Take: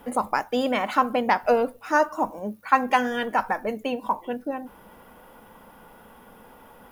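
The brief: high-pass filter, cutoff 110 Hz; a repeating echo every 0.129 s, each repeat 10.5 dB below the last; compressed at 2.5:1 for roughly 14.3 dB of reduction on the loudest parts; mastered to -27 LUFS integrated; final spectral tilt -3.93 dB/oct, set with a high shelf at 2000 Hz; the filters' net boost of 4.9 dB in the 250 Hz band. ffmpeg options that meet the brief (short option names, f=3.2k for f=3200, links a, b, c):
-af "highpass=110,equalizer=f=250:t=o:g=5.5,highshelf=f=2k:g=-5,acompressor=threshold=-37dB:ratio=2.5,aecho=1:1:129|258|387:0.299|0.0896|0.0269,volume=8.5dB"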